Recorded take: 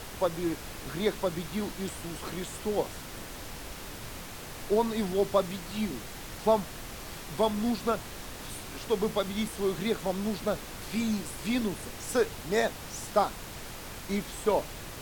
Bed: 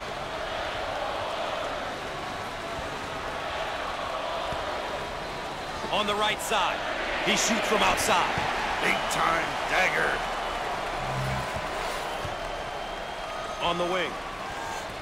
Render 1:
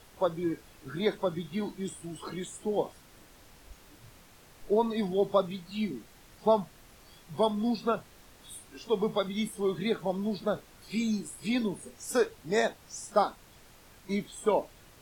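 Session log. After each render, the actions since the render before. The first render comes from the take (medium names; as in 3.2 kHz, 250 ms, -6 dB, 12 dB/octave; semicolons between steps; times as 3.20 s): noise print and reduce 14 dB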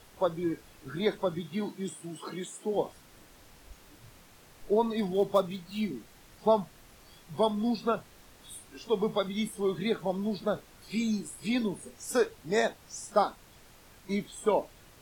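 1.40–2.73 s: high-pass 89 Hz -> 200 Hz 24 dB/octave; 4.98–5.96 s: dead-time distortion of 0.052 ms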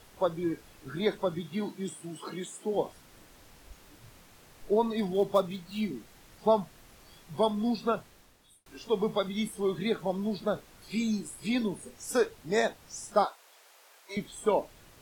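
7.97–8.66 s: fade out; 13.25–14.17 s: high-pass 490 Hz 24 dB/octave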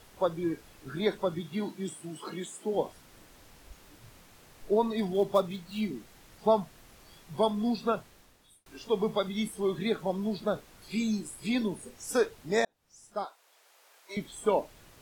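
12.65–14.32 s: fade in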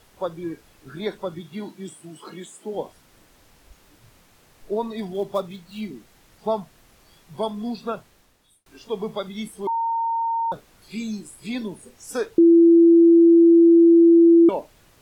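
9.67–10.52 s: bleep 917 Hz -20.5 dBFS; 12.38–14.49 s: bleep 336 Hz -9 dBFS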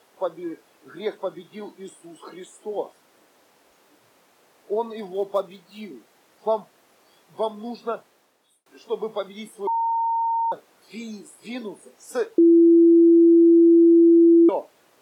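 high-pass 400 Hz 12 dB/octave; tilt shelf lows +4.5 dB, about 1.1 kHz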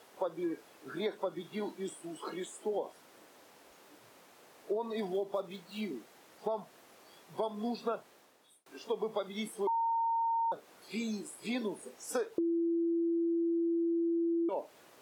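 peak limiter -18 dBFS, peak gain reduction 8 dB; compression 5:1, threshold -31 dBFS, peak gain reduction 10 dB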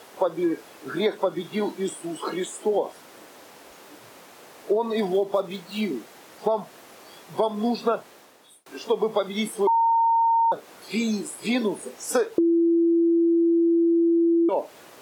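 trim +11.5 dB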